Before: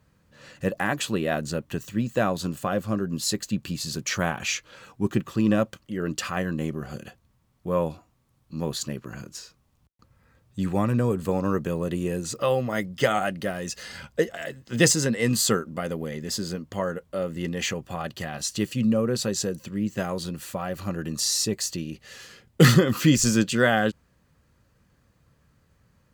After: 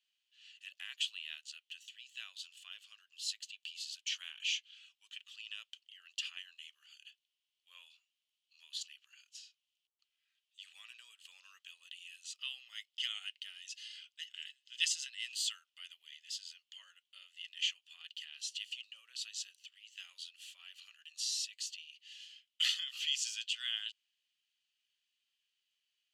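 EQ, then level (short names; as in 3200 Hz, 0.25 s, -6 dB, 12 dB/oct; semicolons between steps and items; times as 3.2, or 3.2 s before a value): ladder high-pass 2800 Hz, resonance 75%; LPF 8700 Hz 12 dB/oct; -2.0 dB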